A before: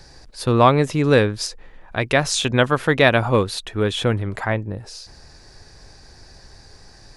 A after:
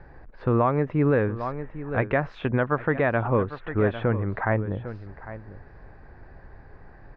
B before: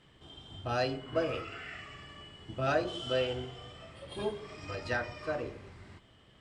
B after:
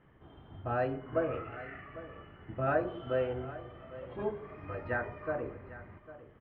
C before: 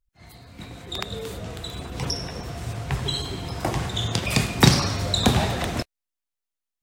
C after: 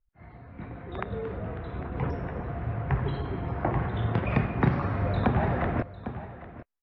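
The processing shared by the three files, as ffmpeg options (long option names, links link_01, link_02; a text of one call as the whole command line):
ffmpeg -i in.wav -filter_complex "[0:a]lowpass=frequency=1900:width=0.5412,lowpass=frequency=1900:width=1.3066,asplit=2[link_01][link_02];[link_02]aecho=0:1:801:0.158[link_03];[link_01][link_03]amix=inputs=2:normalize=0,alimiter=limit=-11.5dB:level=0:latency=1:release=354" out.wav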